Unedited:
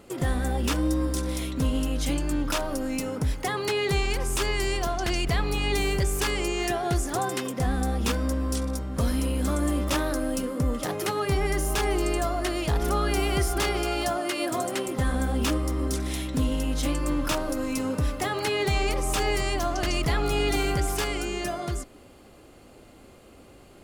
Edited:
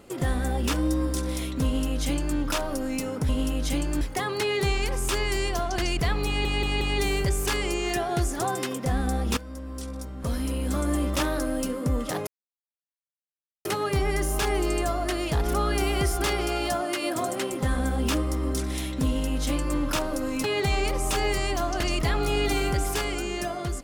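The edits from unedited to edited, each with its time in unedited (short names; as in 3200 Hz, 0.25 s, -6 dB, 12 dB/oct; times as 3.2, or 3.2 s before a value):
1.65–2.37 copy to 3.29
5.55 stutter 0.18 s, 4 plays
8.11–9.69 fade in, from -15 dB
11.01 insert silence 1.38 s
17.8–18.47 cut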